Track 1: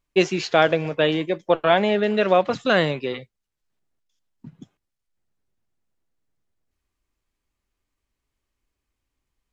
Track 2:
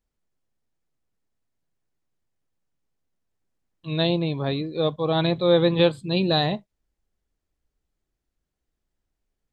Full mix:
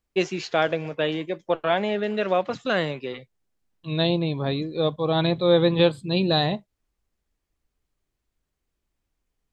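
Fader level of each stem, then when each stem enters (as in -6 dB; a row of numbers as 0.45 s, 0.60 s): -5.0 dB, 0.0 dB; 0.00 s, 0.00 s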